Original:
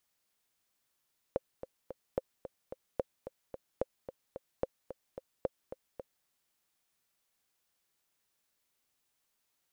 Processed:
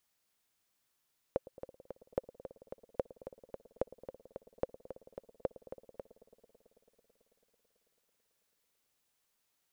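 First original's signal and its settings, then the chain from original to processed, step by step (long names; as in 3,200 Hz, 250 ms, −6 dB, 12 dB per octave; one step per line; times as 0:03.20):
click track 220 BPM, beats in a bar 3, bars 6, 527 Hz, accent 11.5 dB −17 dBFS
delay with a low-pass on its return 110 ms, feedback 85%, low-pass 730 Hz, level −18 dB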